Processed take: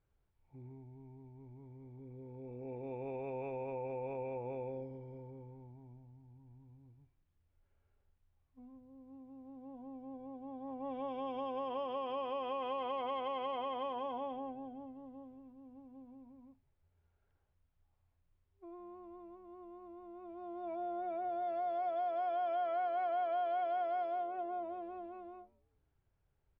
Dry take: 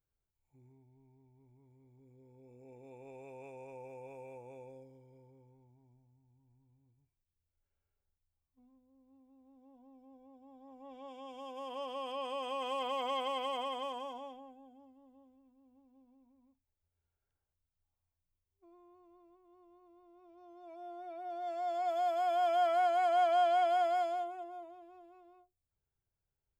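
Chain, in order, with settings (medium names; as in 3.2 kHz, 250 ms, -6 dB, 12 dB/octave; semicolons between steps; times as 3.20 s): treble shelf 4.8 kHz -10.5 dB; compression 4:1, threshold -48 dBFS, peak gain reduction 18 dB; distance through air 270 m; frequency-shifting echo 162 ms, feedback 42%, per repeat -140 Hz, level -23.5 dB; trim +11.5 dB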